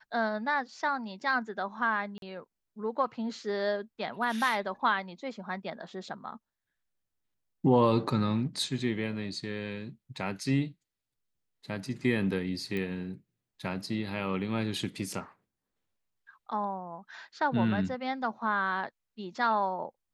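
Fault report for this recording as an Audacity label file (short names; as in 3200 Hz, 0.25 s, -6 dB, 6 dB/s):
2.180000	2.220000	gap 42 ms
12.770000	12.770000	pop -22 dBFS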